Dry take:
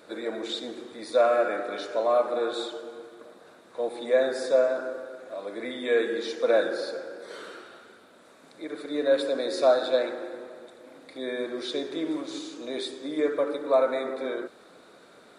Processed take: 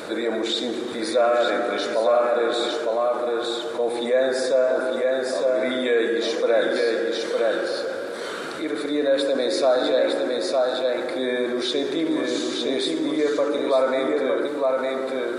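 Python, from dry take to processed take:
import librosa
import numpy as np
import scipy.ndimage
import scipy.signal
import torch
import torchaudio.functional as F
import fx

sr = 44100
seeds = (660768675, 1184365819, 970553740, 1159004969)

p1 = x + fx.echo_single(x, sr, ms=908, db=-4.5, dry=0)
y = fx.env_flatten(p1, sr, amount_pct=50)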